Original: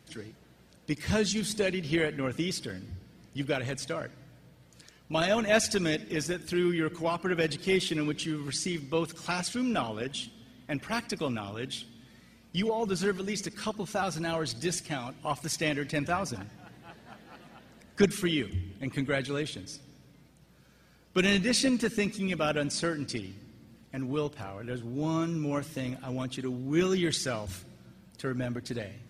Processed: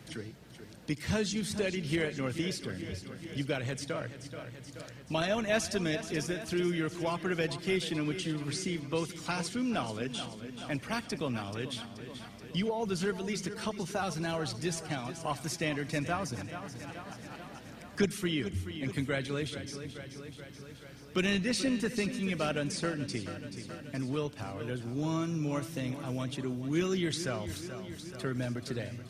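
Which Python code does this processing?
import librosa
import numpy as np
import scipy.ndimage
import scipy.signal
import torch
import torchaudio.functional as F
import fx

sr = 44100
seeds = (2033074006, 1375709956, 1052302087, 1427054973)

y = fx.peak_eq(x, sr, hz=110.0, db=3.5, octaves=1.2)
y = fx.echo_feedback(y, sr, ms=430, feedback_pct=55, wet_db=-13.5)
y = fx.band_squash(y, sr, depth_pct=40)
y = F.gain(torch.from_numpy(y), -3.5).numpy()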